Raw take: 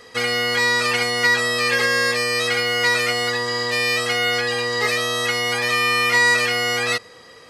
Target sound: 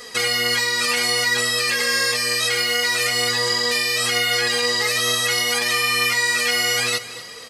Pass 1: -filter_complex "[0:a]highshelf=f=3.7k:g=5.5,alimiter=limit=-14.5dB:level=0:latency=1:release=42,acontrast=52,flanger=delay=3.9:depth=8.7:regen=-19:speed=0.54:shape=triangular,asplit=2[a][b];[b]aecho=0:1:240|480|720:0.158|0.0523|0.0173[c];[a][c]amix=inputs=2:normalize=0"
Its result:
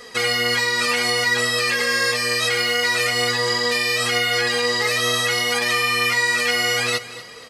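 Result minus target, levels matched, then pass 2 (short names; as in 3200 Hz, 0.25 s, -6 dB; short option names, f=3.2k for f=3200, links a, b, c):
8000 Hz band -3.0 dB
-filter_complex "[0:a]highshelf=f=3.7k:g=13.5,alimiter=limit=-14.5dB:level=0:latency=1:release=42,acontrast=52,flanger=delay=3.9:depth=8.7:regen=-19:speed=0.54:shape=triangular,asplit=2[a][b];[b]aecho=0:1:240|480|720:0.158|0.0523|0.0173[c];[a][c]amix=inputs=2:normalize=0"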